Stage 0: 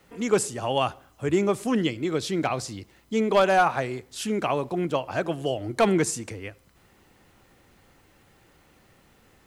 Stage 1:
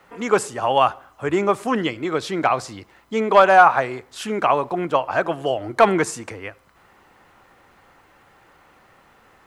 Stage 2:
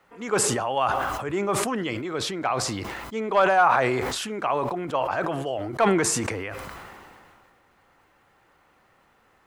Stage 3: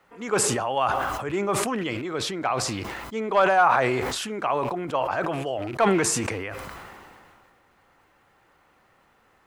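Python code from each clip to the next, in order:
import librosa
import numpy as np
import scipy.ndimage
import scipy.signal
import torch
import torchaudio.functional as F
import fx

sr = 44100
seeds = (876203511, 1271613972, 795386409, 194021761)

y1 = fx.peak_eq(x, sr, hz=1100.0, db=13.5, octaves=2.4)
y1 = y1 * 10.0 ** (-2.5 / 20.0)
y2 = fx.sustainer(y1, sr, db_per_s=25.0)
y2 = y2 * 10.0 ** (-8.0 / 20.0)
y3 = fx.rattle_buzz(y2, sr, strikes_db=-32.0, level_db=-29.0)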